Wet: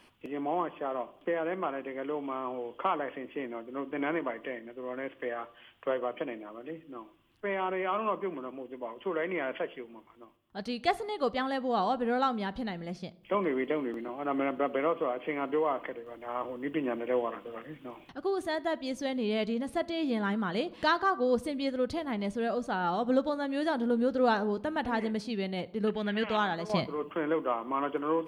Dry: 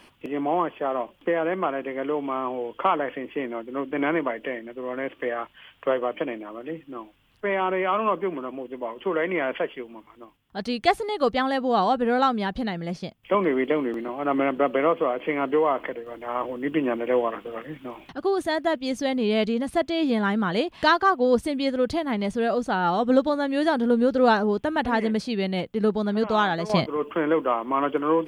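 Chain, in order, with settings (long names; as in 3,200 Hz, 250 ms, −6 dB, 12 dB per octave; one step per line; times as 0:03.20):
0:25.87–0:26.37: flat-topped bell 2,300 Hz +14.5 dB 1.2 octaves
convolution reverb RT60 0.80 s, pre-delay 8 ms, DRR 15.5 dB
level −7.5 dB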